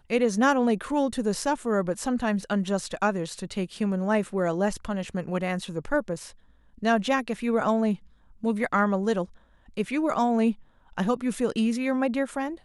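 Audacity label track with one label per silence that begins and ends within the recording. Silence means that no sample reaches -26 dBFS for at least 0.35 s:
6.150000	6.830000	silence
7.940000	8.440000	silence
9.230000	9.780000	silence
10.510000	10.980000	silence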